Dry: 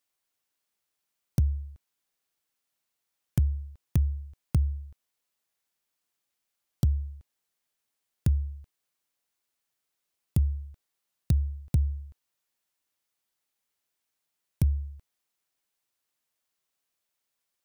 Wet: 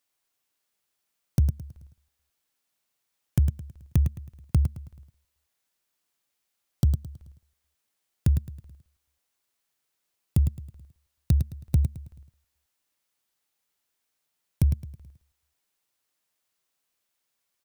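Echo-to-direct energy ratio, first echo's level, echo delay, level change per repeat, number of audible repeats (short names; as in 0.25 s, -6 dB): -7.5 dB, -8.0 dB, 0.106 s, -8.0 dB, 4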